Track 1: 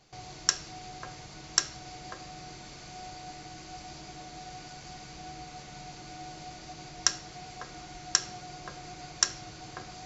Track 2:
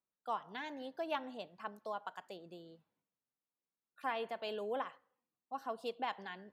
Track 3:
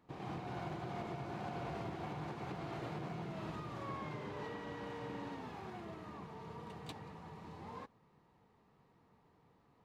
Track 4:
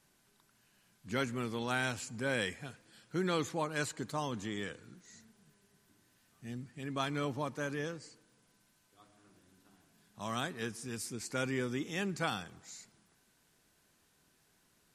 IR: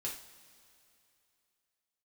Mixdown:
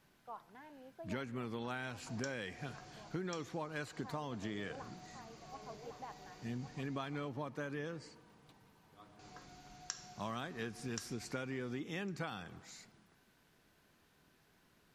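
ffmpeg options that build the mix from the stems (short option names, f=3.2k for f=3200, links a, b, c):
-filter_complex "[0:a]adelay=1750,volume=-17dB,asplit=3[a][b][c];[a]atrim=end=7.29,asetpts=PTS-STARTPTS,afade=t=out:st=7.286:d=0.004:c=hsin[d];[b]atrim=start=7.29:end=9.19,asetpts=PTS-STARTPTS,volume=0[e];[c]atrim=start=9.19,asetpts=PTS-STARTPTS,afade=t=in:d=0.004:c=hsin[f];[d][e][f]concat=n=3:v=0:a=1,asplit=3[g][h][i];[h]volume=-3dB[j];[i]volume=-19dB[k];[1:a]lowpass=1.5k,volume=-10dB,asplit=2[l][m];[m]volume=-7.5dB[n];[2:a]adelay=1600,volume=-17dB[o];[3:a]equalizer=f=8.7k:t=o:w=1.4:g=-11.5,volume=3dB[p];[4:a]atrim=start_sample=2205[q];[j][q]afir=irnorm=-1:irlink=0[r];[k][n]amix=inputs=2:normalize=0,aecho=0:1:1106:1[s];[g][l][o][p][r][s]amix=inputs=6:normalize=0,acompressor=threshold=-37dB:ratio=12"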